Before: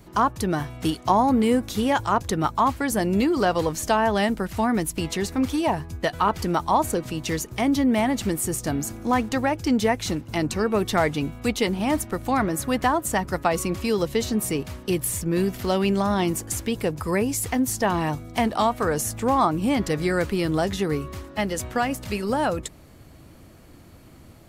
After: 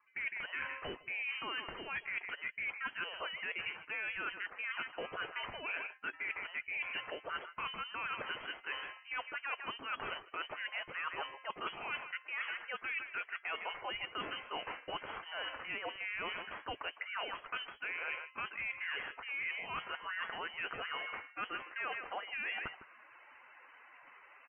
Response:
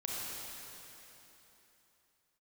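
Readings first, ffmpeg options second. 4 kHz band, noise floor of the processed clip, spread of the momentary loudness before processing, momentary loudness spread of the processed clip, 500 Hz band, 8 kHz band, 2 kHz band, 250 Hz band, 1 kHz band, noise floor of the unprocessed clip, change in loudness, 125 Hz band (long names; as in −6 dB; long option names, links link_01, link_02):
−9.5 dB, −60 dBFS, 6 LU, 5 LU, −24.5 dB, below −40 dB, −5.5 dB, −34.5 dB, −18.5 dB, −48 dBFS, −16.0 dB, −33.5 dB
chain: -filter_complex "[0:a]asplit=2[link_01][link_02];[link_02]alimiter=limit=-16dB:level=0:latency=1:release=24,volume=-1dB[link_03];[link_01][link_03]amix=inputs=2:normalize=0,highpass=1400,asplit=2[link_04][link_05];[link_05]adelay=157.4,volume=-14dB,highshelf=frequency=4000:gain=-3.54[link_06];[link_04][link_06]amix=inputs=2:normalize=0,asoftclip=type=hard:threshold=-21dB,lowpass=frequency=2800:width_type=q:width=0.5098,lowpass=frequency=2800:width_type=q:width=0.6013,lowpass=frequency=2800:width_type=q:width=0.9,lowpass=frequency=2800:width_type=q:width=2.563,afreqshift=-3300,areverse,acompressor=threshold=-39dB:ratio=8,areverse,afftdn=noise_reduction=21:noise_floor=-59,volume=1.5dB"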